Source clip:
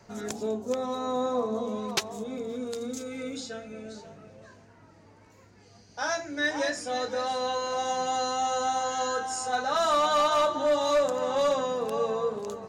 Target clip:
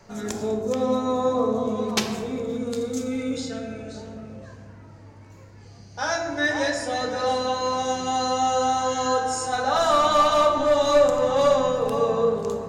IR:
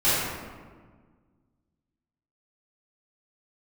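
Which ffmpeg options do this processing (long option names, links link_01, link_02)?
-filter_complex "[0:a]asplit=2[link_01][link_02];[1:a]atrim=start_sample=2205,lowshelf=frequency=240:gain=11[link_03];[link_02][link_03]afir=irnorm=-1:irlink=0,volume=-21dB[link_04];[link_01][link_04]amix=inputs=2:normalize=0,volume=2.5dB"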